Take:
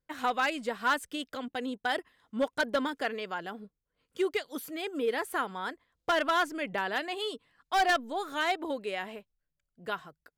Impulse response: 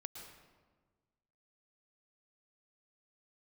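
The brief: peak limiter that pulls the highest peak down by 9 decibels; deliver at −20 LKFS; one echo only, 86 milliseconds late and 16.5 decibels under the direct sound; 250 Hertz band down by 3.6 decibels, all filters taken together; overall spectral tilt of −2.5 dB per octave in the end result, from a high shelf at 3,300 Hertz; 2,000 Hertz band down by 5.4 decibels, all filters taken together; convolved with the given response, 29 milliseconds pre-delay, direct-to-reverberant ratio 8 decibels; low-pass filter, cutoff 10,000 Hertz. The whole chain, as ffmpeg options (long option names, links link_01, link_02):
-filter_complex "[0:a]lowpass=10000,equalizer=frequency=250:width_type=o:gain=-4.5,equalizer=frequency=2000:width_type=o:gain=-9,highshelf=frequency=3300:gain=5.5,alimiter=level_in=4.5dB:limit=-24dB:level=0:latency=1,volume=-4.5dB,aecho=1:1:86:0.15,asplit=2[link_01][link_02];[1:a]atrim=start_sample=2205,adelay=29[link_03];[link_02][link_03]afir=irnorm=-1:irlink=0,volume=-4.5dB[link_04];[link_01][link_04]amix=inputs=2:normalize=0,volume=18.5dB"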